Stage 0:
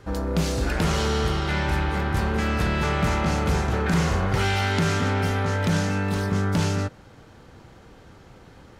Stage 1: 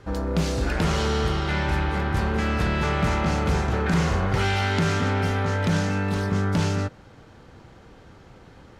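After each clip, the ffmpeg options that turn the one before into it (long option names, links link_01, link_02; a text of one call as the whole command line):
ffmpeg -i in.wav -af "highshelf=frequency=10000:gain=-9.5" out.wav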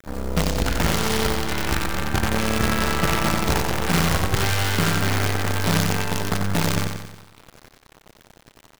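ffmpeg -i in.wav -filter_complex "[0:a]acrusher=bits=4:dc=4:mix=0:aa=0.000001,asplit=2[link_01][link_02];[link_02]aecho=0:1:91|182|273|364|455|546|637:0.531|0.281|0.149|0.079|0.0419|0.0222|0.0118[link_03];[link_01][link_03]amix=inputs=2:normalize=0" out.wav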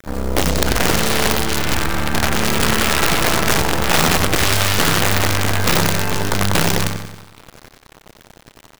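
ffmpeg -i in.wav -af "aeval=exprs='(mod(4.73*val(0)+1,2)-1)/4.73':channel_layout=same,volume=6dB" out.wav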